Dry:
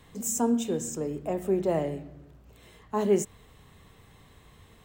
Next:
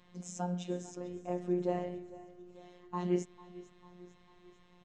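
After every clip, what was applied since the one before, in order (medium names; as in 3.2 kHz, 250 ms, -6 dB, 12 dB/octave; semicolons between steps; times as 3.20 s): low-pass 5.8 kHz 24 dB/octave; robot voice 178 Hz; feedback delay 447 ms, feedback 55%, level -18.5 dB; trim -5.5 dB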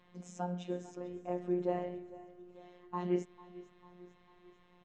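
tone controls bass -4 dB, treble -10 dB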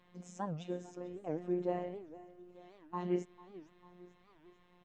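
warped record 78 rpm, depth 250 cents; trim -1.5 dB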